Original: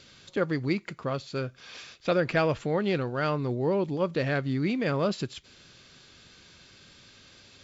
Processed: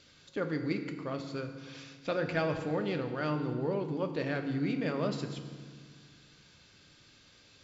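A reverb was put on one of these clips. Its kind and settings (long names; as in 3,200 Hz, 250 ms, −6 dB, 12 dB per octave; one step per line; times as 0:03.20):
feedback delay network reverb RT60 1.7 s, low-frequency decay 1.5×, high-frequency decay 0.8×, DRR 5.5 dB
level −7 dB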